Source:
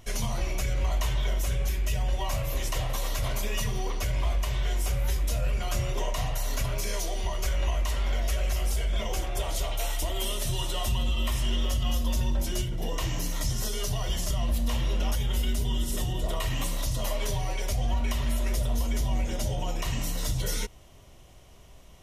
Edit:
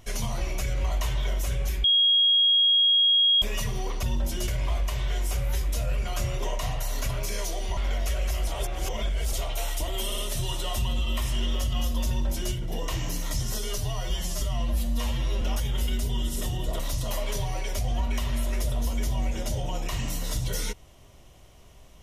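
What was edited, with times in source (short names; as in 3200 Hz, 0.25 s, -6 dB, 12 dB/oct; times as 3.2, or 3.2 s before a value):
1.84–3.42 bleep 3280 Hz -17 dBFS
7.32–7.99 cut
8.69–9.55 reverse
10.28 stutter 0.06 s, 3 plays
12.18–12.63 copy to 4.03
13.88–14.97 stretch 1.5×
16.35–16.73 cut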